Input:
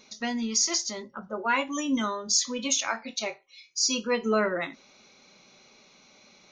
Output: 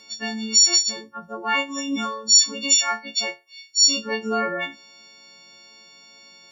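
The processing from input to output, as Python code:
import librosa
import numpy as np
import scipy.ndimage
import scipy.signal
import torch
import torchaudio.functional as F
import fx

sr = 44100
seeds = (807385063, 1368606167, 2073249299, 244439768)

y = fx.freq_snap(x, sr, grid_st=4)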